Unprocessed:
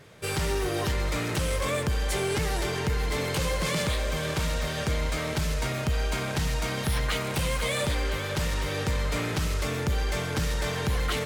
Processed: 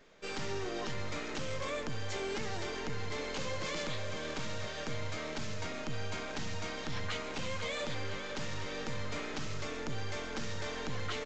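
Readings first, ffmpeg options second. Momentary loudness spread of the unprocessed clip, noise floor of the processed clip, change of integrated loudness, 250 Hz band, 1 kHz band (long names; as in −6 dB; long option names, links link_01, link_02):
2 LU, −41 dBFS, −10.5 dB, −9.5 dB, −8.5 dB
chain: -filter_complex "[0:a]acrossover=split=200[link_01][link_02];[link_01]aeval=exprs='abs(val(0))':channel_layout=same[link_03];[link_03][link_02]amix=inputs=2:normalize=0,aresample=16000,aresample=44100,volume=-8.5dB"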